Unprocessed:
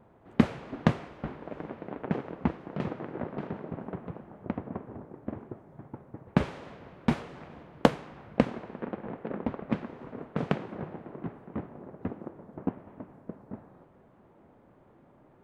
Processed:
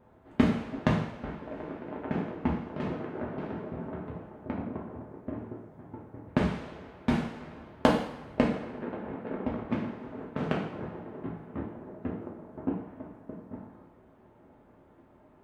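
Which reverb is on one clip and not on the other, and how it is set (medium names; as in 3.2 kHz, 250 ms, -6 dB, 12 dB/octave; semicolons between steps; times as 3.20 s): two-slope reverb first 0.62 s, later 1.6 s, from -18 dB, DRR -2.5 dB; trim -3.5 dB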